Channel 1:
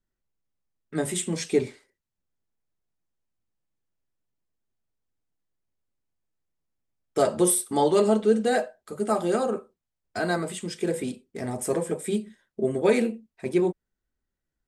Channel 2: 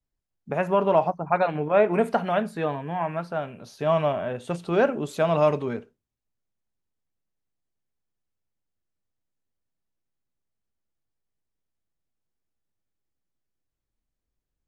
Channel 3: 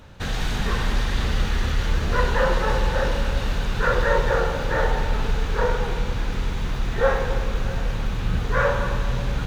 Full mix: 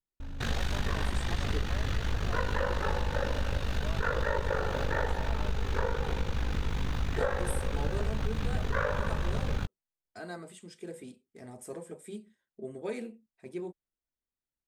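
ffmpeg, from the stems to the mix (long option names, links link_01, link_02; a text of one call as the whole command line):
ffmpeg -i stem1.wav -i stem2.wav -i stem3.wav -filter_complex "[0:a]volume=-15.5dB[link_01];[1:a]bass=frequency=250:gain=-12,treble=frequency=4000:gain=-1,acompressor=threshold=-30dB:ratio=6,volume=-10dB[link_02];[2:a]aeval=exprs='val(0)+0.0355*(sin(2*PI*50*n/s)+sin(2*PI*2*50*n/s)/2+sin(2*PI*3*50*n/s)/3+sin(2*PI*4*50*n/s)/4+sin(2*PI*5*50*n/s)/5)':channel_layout=same,aeval=exprs='val(0)*sin(2*PI*25*n/s)':channel_layout=same,adelay=200,volume=-1dB[link_03];[link_01][link_02][link_03]amix=inputs=3:normalize=0,acompressor=threshold=-25dB:ratio=6" out.wav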